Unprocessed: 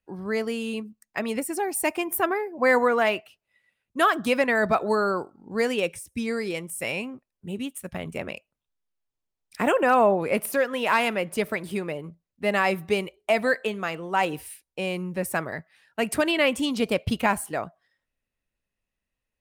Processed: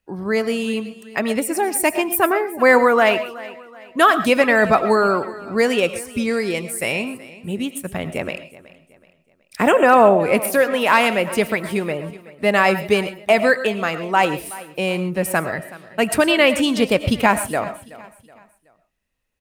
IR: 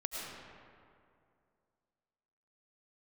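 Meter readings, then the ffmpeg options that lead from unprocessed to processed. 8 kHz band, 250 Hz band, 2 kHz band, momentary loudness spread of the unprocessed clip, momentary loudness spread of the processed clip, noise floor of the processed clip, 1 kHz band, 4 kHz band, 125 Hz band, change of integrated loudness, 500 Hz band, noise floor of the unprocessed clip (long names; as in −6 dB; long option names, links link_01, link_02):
+7.5 dB, +7.0 dB, +7.5 dB, 14 LU, 14 LU, −62 dBFS, +7.5 dB, +7.5 dB, +7.0 dB, +7.5 dB, +7.5 dB, below −85 dBFS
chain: -filter_complex "[0:a]aecho=1:1:374|748|1122:0.112|0.0438|0.0171,asplit=2[link_01][link_02];[1:a]atrim=start_sample=2205,atrim=end_sample=6174[link_03];[link_02][link_03]afir=irnorm=-1:irlink=0,volume=-3.5dB[link_04];[link_01][link_04]amix=inputs=2:normalize=0,volume=3.5dB"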